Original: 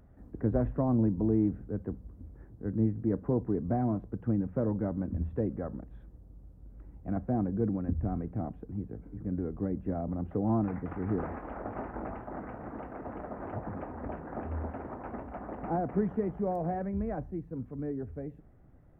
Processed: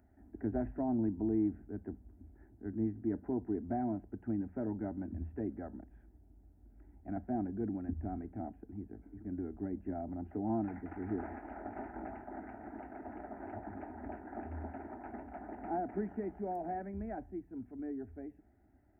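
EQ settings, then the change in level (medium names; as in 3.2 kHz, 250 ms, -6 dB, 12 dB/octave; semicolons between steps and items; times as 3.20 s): high-pass 63 Hz; static phaser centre 750 Hz, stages 8; -3.0 dB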